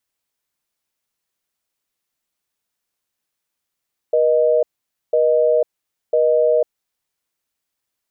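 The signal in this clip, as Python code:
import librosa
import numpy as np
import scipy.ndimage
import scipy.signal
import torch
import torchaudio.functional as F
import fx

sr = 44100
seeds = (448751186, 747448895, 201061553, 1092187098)

y = fx.call_progress(sr, length_s=2.78, kind='busy tone', level_db=-15.0)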